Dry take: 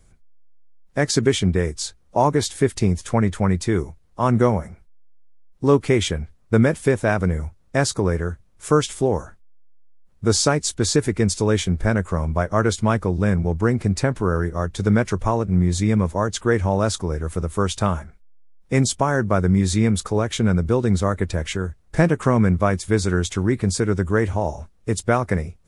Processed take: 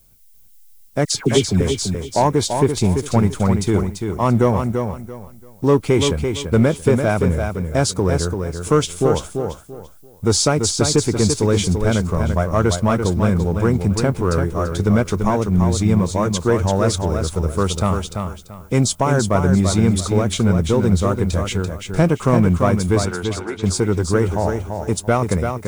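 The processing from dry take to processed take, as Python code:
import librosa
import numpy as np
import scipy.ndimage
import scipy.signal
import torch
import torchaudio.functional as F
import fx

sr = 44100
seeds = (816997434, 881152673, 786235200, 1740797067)

y = fx.peak_eq(x, sr, hz=1800.0, db=-10.0, octaves=0.28)
y = fx.leveller(y, sr, passes=1)
y = fx.dispersion(y, sr, late='lows', ms=99.0, hz=1200.0, at=(1.05, 1.61))
y = fx.dmg_noise_colour(y, sr, seeds[0], colour='violet', level_db=-55.0)
y = fx.bandpass_edges(y, sr, low_hz=570.0, high_hz=3500.0, at=(23.05, 23.62), fade=0.02)
y = fx.echo_feedback(y, sr, ms=339, feedback_pct=25, wet_db=-6)
y = y * librosa.db_to_amplitude(-1.0)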